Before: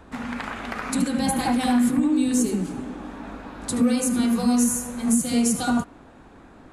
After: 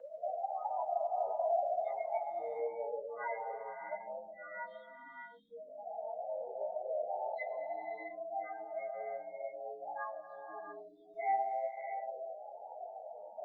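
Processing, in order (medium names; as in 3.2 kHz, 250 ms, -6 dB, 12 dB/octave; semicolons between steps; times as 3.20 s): peaking EQ 1.2 kHz +13 dB 1 oct; in parallel at -2 dB: peak limiter -17.5 dBFS, peak gain reduction 11 dB; on the sum: compression 8:1, threshold -27 dBFS, peak gain reduction 15 dB; harmonic tremolo 1.5 Hz, depth 100%, crossover 1.4 kHz; loudest bins only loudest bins 8; distance through air 53 m; gated-style reverb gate 360 ms rising, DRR 4 dB; speed mistake 15 ips tape played at 7.5 ips; mistuned SSB +63 Hz 550–2100 Hz; trim +7 dB; Opus 24 kbps 48 kHz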